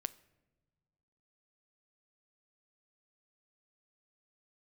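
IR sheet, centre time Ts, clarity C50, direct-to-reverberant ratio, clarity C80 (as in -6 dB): 3 ms, 19.5 dB, 14.5 dB, 22.0 dB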